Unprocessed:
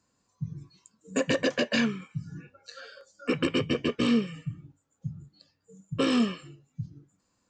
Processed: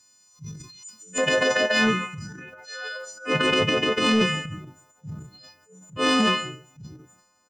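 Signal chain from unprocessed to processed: partials quantised in pitch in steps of 3 st; peaking EQ 5.4 kHz +11 dB 3 oct, from 1.18 s 890 Hz; transient shaper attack -8 dB, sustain +10 dB; gain riding within 4 dB 2 s; saturation -11 dBFS, distortion -21 dB; echo from a far wall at 24 m, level -20 dB

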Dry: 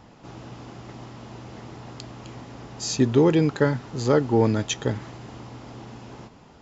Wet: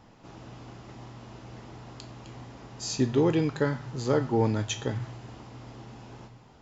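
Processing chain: on a send: elliptic band-stop 130–700 Hz + reverberation RT60 0.65 s, pre-delay 7 ms, DRR 7.5 dB; on the sum: trim -5.5 dB

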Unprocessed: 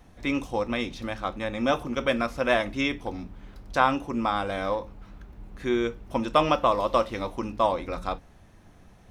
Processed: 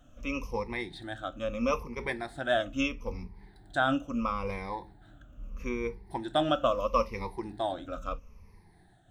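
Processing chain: drifting ripple filter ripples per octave 0.85, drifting -0.76 Hz, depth 19 dB; bass shelf 71 Hz +7.5 dB; random flutter of the level, depth 50%; trim -7.5 dB

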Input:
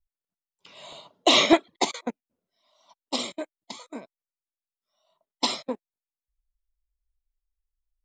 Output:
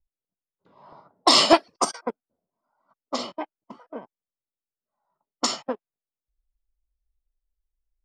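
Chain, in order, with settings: time-frequency box 1.74–2.78 s, 1.6–3.3 kHz -11 dB; formant shift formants +5 st; level-controlled noise filter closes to 660 Hz, open at -20 dBFS; trim +2 dB

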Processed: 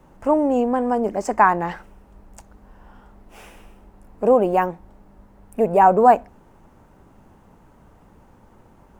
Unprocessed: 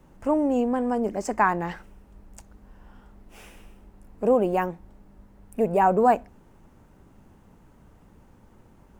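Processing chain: peaking EQ 840 Hz +5.5 dB 1.9 oct; trim +1.5 dB

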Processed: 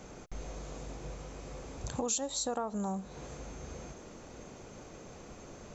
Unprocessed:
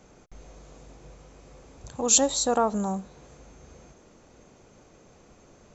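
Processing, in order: compression 6:1, threshold -38 dBFS, peak gain reduction 21.5 dB; trim +5.5 dB

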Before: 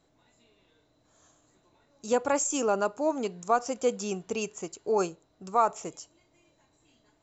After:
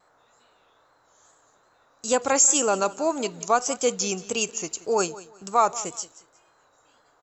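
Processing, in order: gate -54 dBFS, range -8 dB; treble shelf 2.2 kHz +11.5 dB; band noise 420–1500 Hz -65 dBFS; wow and flutter 67 cents; on a send: feedback delay 179 ms, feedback 27%, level -18 dB; on the sum: trim +2 dB

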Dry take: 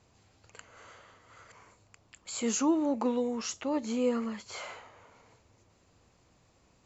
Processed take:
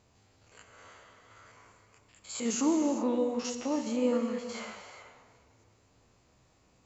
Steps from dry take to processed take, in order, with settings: spectrogram pixelated in time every 50 ms; gated-style reverb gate 440 ms flat, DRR 5.5 dB

